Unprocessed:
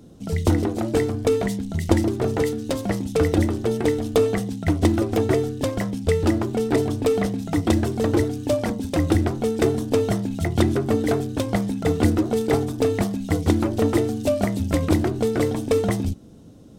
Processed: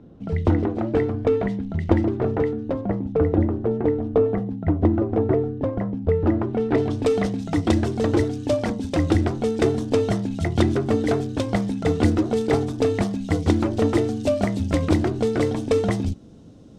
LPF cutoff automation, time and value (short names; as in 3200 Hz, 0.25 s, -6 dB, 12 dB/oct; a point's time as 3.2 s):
2.14 s 2100 Hz
2.88 s 1100 Hz
6.1 s 1100 Hz
6.74 s 2600 Hz
7.04 s 6900 Hz